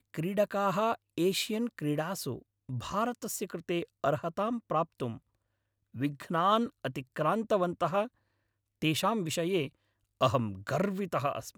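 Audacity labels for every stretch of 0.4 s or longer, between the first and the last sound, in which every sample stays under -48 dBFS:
5.180000	5.940000	silence
8.080000	8.820000	silence
9.690000	10.210000	silence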